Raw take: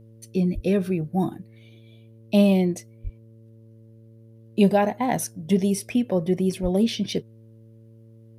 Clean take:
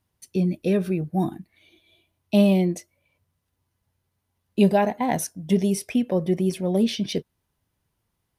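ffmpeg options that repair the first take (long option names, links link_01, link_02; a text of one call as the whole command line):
ffmpeg -i in.wav -filter_complex "[0:a]bandreject=frequency=112.4:width_type=h:width=4,bandreject=frequency=224.8:width_type=h:width=4,bandreject=frequency=337.2:width_type=h:width=4,bandreject=frequency=449.6:width_type=h:width=4,bandreject=frequency=562:width_type=h:width=4,asplit=3[link_01][link_02][link_03];[link_01]afade=type=out:start_time=0.54:duration=0.02[link_04];[link_02]highpass=frequency=140:width=0.5412,highpass=frequency=140:width=1.3066,afade=type=in:start_time=0.54:duration=0.02,afade=type=out:start_time=0.66:duration=0.02[link_05];[link_03]afade=type=in:start_time=0.66:duration=0.02[link_06];[link_04][link_05][link_06]amix=inputs=3:normalize=0,asplit=3[link_07][link_08][link_09];[link_07]afade=type=out:start_time=3.03:duration=0.02[link_10];[link_08]highpass=frequency=140:width=0.5412,highpass=frequency=140:width=1.3066,afade=type=in:start_time=3.03:duration=0.02,afade=type=out:start_time=3.15:duration=0.02[link_11];[link_09]afade=type=in:start_time=3.15:duration=0.02[link_12];[link_10][link_11][link_12]amix=inputs=3:normalize=0,asplit=3[link_13][link_14][link_15];[link_13]afade=type=out:start_time=6.62:duration=0.02[link_16];[link_14]highpass=frequency=140:width=0.5412,highpass=frequency=140:width=1.3066,afade=type=in:start_time=6.62:duration=0.02,afade=type=out:start_time=6.74:duration=0.02[link_17];[link_15]afade=type=in:start_time=6.74:duration=0.02[link_18];[link_16][link_17][link_18]amix=inputs=3:normalize=0" out.wav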